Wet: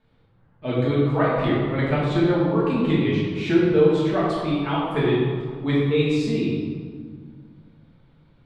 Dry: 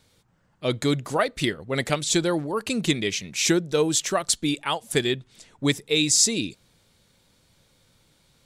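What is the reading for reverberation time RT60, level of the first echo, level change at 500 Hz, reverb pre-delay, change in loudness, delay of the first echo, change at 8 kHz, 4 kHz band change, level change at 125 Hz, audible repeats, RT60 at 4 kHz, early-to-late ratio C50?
2.0 s, no echo, +5.0 dB, 3 ms, +2.0 dB, no echo, under -25 dB, -9.0 dB, +8.0 dB, no echo, 1.1 s, -1.5 dB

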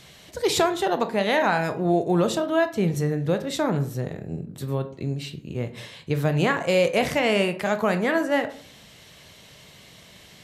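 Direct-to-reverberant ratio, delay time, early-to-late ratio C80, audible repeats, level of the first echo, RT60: 8.5 dB, no echo, 18.5 dB, no echo, no echo, 0.55 s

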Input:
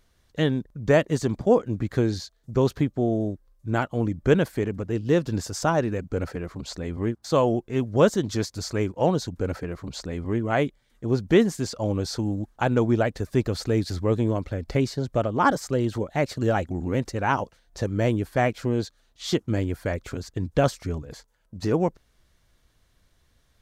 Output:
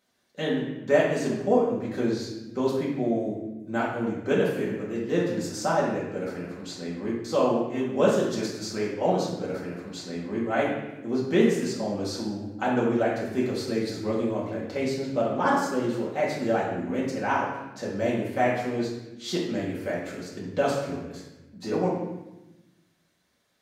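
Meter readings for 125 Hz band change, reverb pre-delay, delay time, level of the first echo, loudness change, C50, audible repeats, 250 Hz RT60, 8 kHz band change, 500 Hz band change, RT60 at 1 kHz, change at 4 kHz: -9.0 dB, 4 ms, no echo, no echo, -2.0 dB, 2.0 dB, no echo, 1.6 s, -2.5 dB, -1.0 dB, 0.95 s, -2.0 dB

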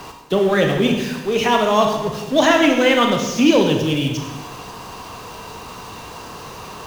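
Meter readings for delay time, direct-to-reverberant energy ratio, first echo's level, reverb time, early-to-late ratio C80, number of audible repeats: no echo, 2.5 dB, no echo, 1.2 s, 6.5 dB, no echo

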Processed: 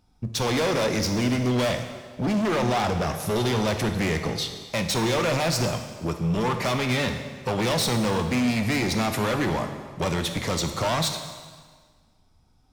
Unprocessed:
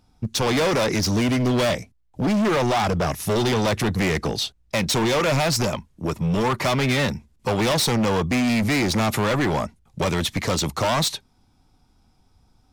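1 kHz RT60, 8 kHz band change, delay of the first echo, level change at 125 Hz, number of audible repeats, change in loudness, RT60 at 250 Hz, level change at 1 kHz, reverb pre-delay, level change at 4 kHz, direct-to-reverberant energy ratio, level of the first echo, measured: 1.6 s, -3.0 dB, no echo, -2.5 dB, no echo, -3.0 dB, 1.6 s, -3.0 dB, 6 ms, -3.0 dB, 6.0 dB, no echo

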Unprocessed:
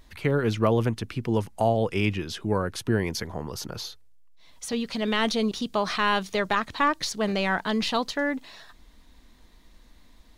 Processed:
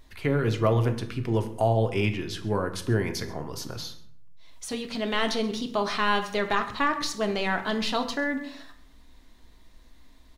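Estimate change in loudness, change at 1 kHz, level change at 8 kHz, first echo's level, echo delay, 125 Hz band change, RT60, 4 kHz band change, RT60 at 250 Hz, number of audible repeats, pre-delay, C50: -1.0 dB, -1.0 dB, -1.5 dB, -21.0 dB, 132 ms, +1.5 dB, 0.65 s, -1.0 dB, 0.90 s, 1, 3 ms, 11.0 dB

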